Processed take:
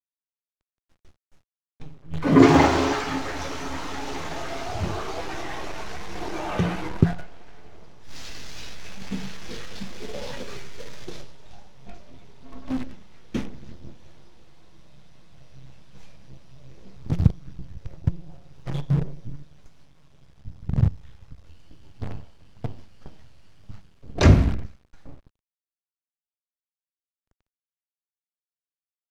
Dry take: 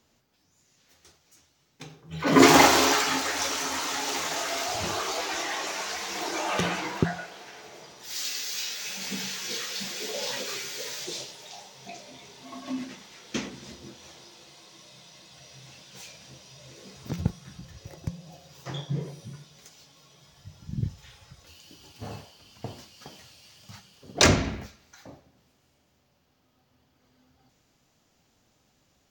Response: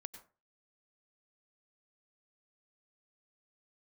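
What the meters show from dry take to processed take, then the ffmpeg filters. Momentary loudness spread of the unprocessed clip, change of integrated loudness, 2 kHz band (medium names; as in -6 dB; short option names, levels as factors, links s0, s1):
24 LU, +1.0 dB, -4.5 dB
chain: -af "acrusher=bits=6:dc=4:mix=0:aa=0.000001,aemphasis=mode=reproduction:type=riaa,volume=0.794"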